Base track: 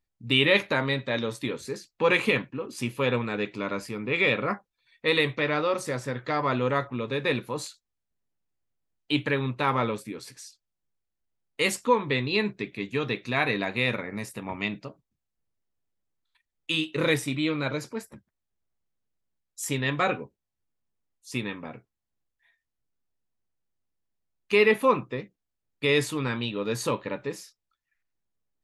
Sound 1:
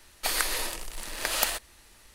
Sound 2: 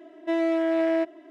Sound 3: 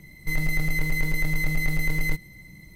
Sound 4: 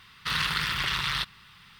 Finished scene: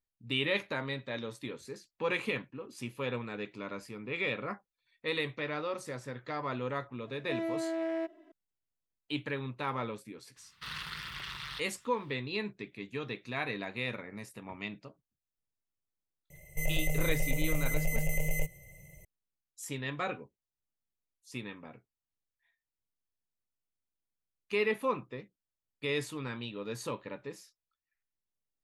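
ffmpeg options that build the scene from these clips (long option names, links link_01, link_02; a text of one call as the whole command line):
ffmpeg -i bed.wav -i cue0.wav -i cue1.wav -i cue2.wav -i cue3.wav -filter_complex "[0:a]volume=-10dB[link_01];[3:a]firequalizer=gain_entry='entry(160,0);entry(250,-28);entry(350,-3);entry(570,14);entry(1200,-19);entry(2800,10);entry(4000,-18);entry(6400,9);entry(9900,6)':delay=0.05:min_phase=1[link_02];[2:a]atrim=end=1.3,asetpts=PTS-STARTPTS,volume=-10.5dB,afade=type=in:duration=0.004:curve=hsin,afade=type=out:start_time=1.296:duration=0.004:curve=hsin,adelay=7020[link_03];[4:a]atrim=end=1.79,asetpts=PTS-STARTPTS,volume=-13.5dB,afade=type=in:duration=0.004:curve=hsin,afade=type=out:start_time=1.786:duration=0.004:curve=hsin,adelay=10360[link_04];[link_02]atrim=end=2.75,asetpts=PTS-STARTPTS,volume=-6dB,afade=type=in:duration=0.004:curve=hsin,afade=type=out:start_time=2.746:duration=0.004:curve=hsin,adelay=16300[link_05];[link_01][link_03][link_04][link_05]amix=inputs=4:normalize=0" out.wav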